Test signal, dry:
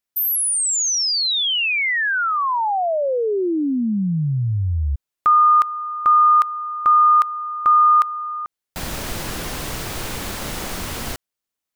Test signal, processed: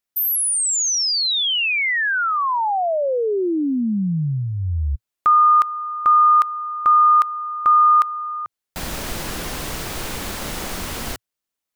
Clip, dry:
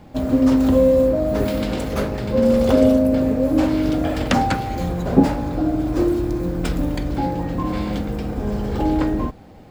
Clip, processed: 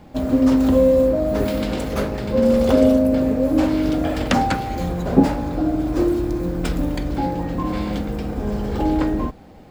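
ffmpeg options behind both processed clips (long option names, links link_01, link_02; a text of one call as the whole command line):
ffmpeg -i in.wav -af "equalizer=frequency=110:width=3.5:gain=-4.5" out.wav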